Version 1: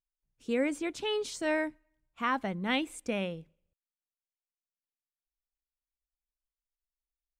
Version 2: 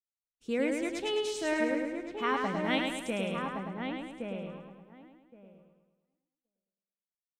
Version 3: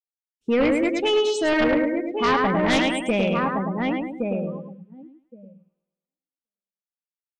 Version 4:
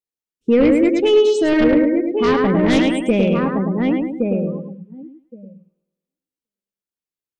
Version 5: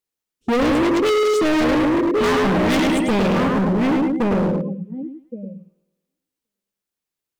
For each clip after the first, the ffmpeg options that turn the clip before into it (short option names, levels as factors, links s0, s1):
-filter_complex "[0:a]asplit=2[s0][s1];[s1]adelay=1118,lowpass=f=1300:p=1,volume=0.631,asplit=2[s2][s3];[s3]adelay=1118,lowpass=f=1300:p=1,volume=0.15,asplit=2[s4][s5];[s5]adelay=1118,lowpass=f=1300:p=1,volume=0.15[s6];[s2][s4][s6]amix=inputs=3:normalize=0[s7];[s0][s7]amix=inputs=2:normalize=0,agate=range=0.0224:threshold=0.00141:ratio=3:detection=peak,asplit=2[s8][s9];[s9]aecho=0:1:106|212|318|424|530|636|742:0.631|0.334|0.177|0.0939|0.0498|0.0264|0.014[s10];[s8][s10]amix=inputs=2:normalize=0,volume=0.841"
-af "afftdn=nr=26:nf=-42,aeval=exprs='0.188*sin(PI/2*2.82*val(0)/0.188)':c=same"
-af "lowshelf=f=570:t=q:w=1.5:g=6.5"
-af "asoftclip=type=hard:threshold=0.075,volume=2.11"